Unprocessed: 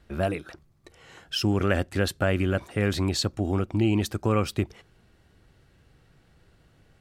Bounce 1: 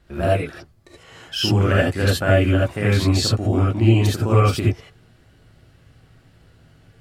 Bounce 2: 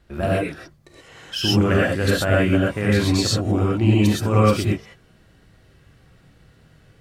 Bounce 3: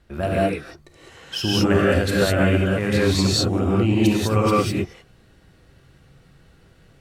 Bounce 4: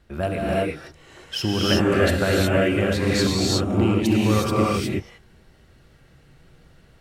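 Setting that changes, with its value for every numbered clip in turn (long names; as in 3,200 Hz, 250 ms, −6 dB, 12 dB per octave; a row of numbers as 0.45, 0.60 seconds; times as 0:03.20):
reverb whose tail is shaped and stops, gate: 100, 150, 230, 390 milliseconds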